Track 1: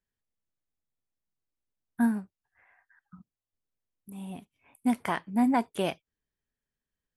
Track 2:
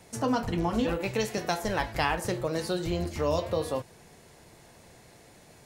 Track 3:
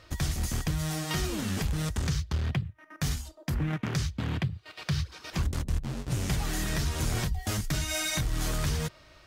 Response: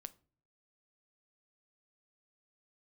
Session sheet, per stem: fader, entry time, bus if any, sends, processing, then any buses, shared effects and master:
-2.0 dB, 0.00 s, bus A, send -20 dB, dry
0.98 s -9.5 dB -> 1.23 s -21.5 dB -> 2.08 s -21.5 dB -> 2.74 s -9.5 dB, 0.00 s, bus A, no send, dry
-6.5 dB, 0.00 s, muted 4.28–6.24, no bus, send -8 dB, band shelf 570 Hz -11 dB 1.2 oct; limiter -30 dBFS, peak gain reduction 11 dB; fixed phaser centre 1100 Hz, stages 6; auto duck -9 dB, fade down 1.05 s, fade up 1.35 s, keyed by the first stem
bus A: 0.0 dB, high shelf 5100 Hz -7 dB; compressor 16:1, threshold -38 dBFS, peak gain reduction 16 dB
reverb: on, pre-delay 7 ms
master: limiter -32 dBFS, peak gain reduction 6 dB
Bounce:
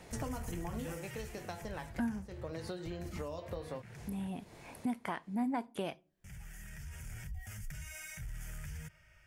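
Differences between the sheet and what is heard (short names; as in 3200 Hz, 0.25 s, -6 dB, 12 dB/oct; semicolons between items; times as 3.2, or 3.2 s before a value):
stem 1 -2.0 dB -> +9.0 dB; stem 2 -9.5 dB -> +1.0 dB; master: missing limiter -32 dBFS, peak gain reduction 6 dB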